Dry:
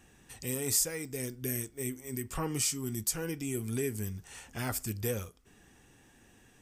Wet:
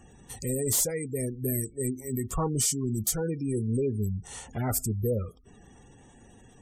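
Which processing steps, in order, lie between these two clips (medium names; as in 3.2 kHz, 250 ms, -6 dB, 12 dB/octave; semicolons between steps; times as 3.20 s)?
sine folder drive 10 dB, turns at -15 dBFS; spectral gate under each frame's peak -20 dB strong; graphic EQ with 31 bands 315 Hz -5 dB, 1.6 kHz -11 dB, 2.5 kHz -12 dB, 5 kHz -5 dB; trim -5 dB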